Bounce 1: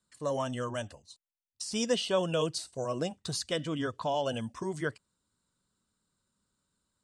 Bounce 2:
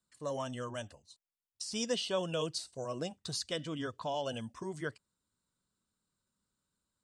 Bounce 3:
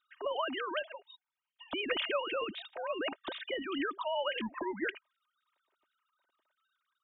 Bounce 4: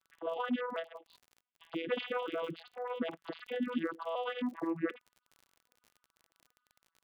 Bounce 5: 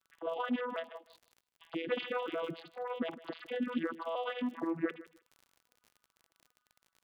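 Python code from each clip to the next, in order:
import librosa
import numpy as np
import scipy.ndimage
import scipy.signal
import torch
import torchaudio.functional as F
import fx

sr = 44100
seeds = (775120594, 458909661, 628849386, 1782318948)

y1 = fx.dynamic_eq(x, sr, hz=4600.0, q=1.0, threshold_db=-48.0, ratio=4.0, max_db=4)
y1 = F.gain(torch.from_numpy(y1), -5.5).numpy()
y2 = fx.sine_speech(y1, sr)
y2 = y2 + 0.55 * np.pad(y2, (int(3.2 * sr / 1000.0), 0))[:len(y2)]
y2 = fx.spectral_comp(y2, sr, ratio=2.0)
y2 = F.gain(torch.from_numpy(y2), -1.5).numpy()
y3 = fx.vocoder_arp(y2, sr, chord='bare fifth', root=52, every_ms=377)
y3 = fx.dmg_crackle(y3, sr, seeds[0], per_s=32.0, level_db=-47.0)
y4 = fx.echo_feedback(y3, sr, ms=155, feedback_pct=18, wet_db=-17.5)
y4 = fx.doppler_dist(y4, sr, depth_ms=0.11)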